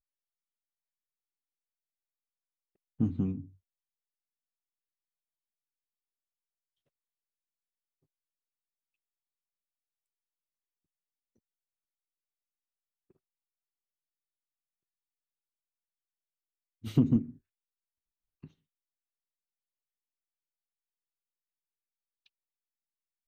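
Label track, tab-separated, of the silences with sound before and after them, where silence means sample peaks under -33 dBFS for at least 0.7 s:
3.400000	16.850000	silence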